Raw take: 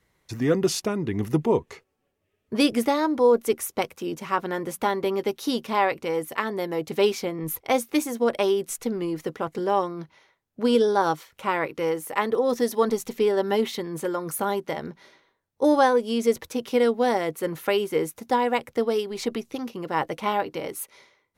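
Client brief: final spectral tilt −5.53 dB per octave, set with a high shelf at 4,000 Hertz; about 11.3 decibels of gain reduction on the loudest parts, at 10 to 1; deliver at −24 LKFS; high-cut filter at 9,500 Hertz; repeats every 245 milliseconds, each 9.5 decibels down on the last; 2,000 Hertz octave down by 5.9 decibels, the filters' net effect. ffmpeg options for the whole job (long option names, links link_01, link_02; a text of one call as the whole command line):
ffmpeg -i in.wav -af "lowpass=9500,equalizer=frequency=2000:width_type=o:gain=-5.5,highshelf=frequency=4000:gain=-8.5,acompressor=threshold=-27dB:ratio=10,aecho=1:1:245|490|735|980:0.335|0.111|0.0365|0.012,volume=8.5dB" out.wav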